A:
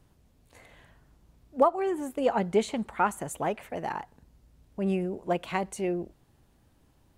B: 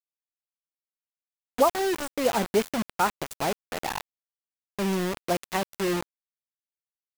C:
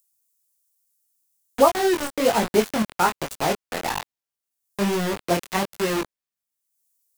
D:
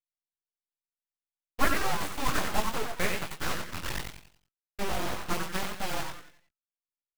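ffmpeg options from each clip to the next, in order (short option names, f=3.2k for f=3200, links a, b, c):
-af "acrusher=bits=4:mix=0:aa=0.000001,volume=1dB"
-filter_complex "[0:a]flanger=delay=18:depth=5.9:speed=1.2,acrossover=split=460|6700[a][b][c];[c]acompressor=mode=upward:threshold=-58dB:ratio=2.5[d];[a][b][d]amix=inputs=3:normalize=0,volume=7.5dB"
-filter_complex "[0:a]agate=range=-33dB:threshold=-31dB:ratio=3:detection=peak,asplit=6[a][b][c][d][e][f];[b]adelay=91,afreqshift=130,volume=-4.5dB[g];[c]adelay=182,afreqshift=260,volume=-13.1dB[h];[d]adelay=273,afreqshift=390,volume=-21.8dB[i];[e]adelay=364,afreqshift=520,volume=-30.4dB[j];[f]adelay=455,afreqshift=650,volume=-39dB[k];[a][g][h][i][j][k]amix=inputs=6:normalize=0,aeval=exprs='abs(val(0))':c=same,volume=-6.5dB"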